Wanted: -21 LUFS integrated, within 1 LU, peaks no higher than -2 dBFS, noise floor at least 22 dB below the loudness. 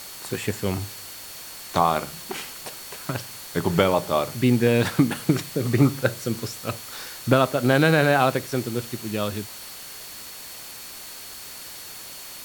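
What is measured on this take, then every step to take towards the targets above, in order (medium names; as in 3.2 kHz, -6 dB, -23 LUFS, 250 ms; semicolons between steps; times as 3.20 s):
steady tone 4.4 kHz; tone level -46 dBFS; noise floor -39 dBFS; noise floor target -46 dBFS; loudness -23.5 LUFS; peak level -3.0 dBFS; loudness target -21.0 LUFS
-> band-stop 4.4 kHz, Q 30; noise reduction 7 dB, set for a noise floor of -39 dBFS; trim +2.5 dB; peak limiter -2 dBFS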